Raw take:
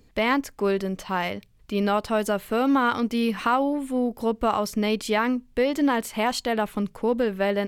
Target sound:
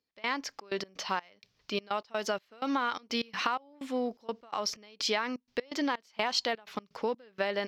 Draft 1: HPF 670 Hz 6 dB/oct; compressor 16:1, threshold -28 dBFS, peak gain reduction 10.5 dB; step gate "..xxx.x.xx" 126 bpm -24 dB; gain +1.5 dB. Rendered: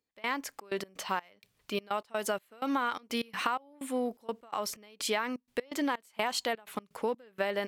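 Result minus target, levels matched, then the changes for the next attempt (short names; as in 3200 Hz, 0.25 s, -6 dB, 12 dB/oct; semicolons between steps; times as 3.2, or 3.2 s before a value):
8000 Hz band +2.5 dB
add after compressor: resonant high shelf 7100 Hz -11 dB, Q 3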